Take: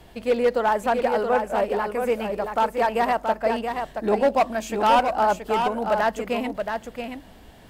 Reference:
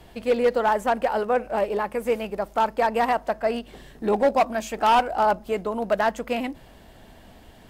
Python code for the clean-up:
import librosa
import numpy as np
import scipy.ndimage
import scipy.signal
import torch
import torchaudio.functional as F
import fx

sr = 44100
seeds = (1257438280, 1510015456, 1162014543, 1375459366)

y = fx.fix_declick_ar(x, sr, threshold=6.5)
y = fx.fix_echo_inverse(y, sr, delay_ms=676, level_db=-6.0)